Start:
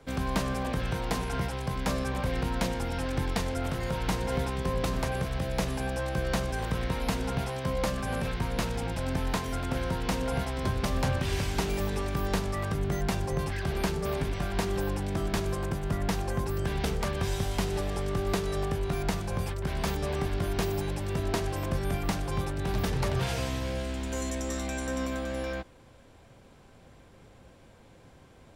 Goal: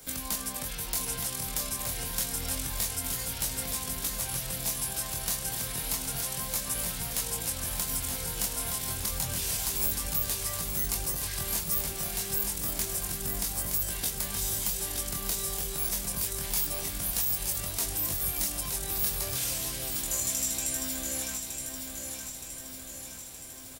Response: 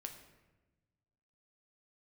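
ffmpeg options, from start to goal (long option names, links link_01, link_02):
-filter_complex "[0:a]crystalizer=i=3.5:c=0,acompressor=threshold=-39dB:ratio=2.5,flanger=delay=18.5:depth=7.3:speed=0.24,volume=30.5dB,asoftclip=hard,volume=-30.5dB,atempo=1.2,aemphasis=mode=production:type=75kf,asplit=2[link_01][link_02];[link_02]adelay=24,volume=-8dB[link_03];[link_01][link_03]amix=inputs=2:normalize=0,aecho=1:1:920|1840|2760|3680|4600|5520|6440|7360:0.501|0.291|0.169|0.0978|0.0567|0.0329|0.0191|0.0111"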